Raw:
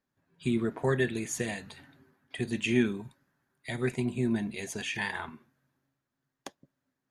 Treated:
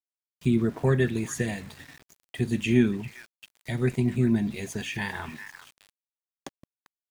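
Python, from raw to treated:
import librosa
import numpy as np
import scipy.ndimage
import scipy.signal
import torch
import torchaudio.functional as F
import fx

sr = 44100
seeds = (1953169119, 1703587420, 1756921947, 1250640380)

y = fx.low_shelf(x, sr, hz=250.0, db=10.5)
y = fx.echo_stepped(y, sr, ms=395, hz=1600.0, octaves=1.4, feedback_pct=70, wet_db=-8)
y = np.where(np.abs(y) >= 10.0 ** (-45.5 / 20.0), y, 0.0)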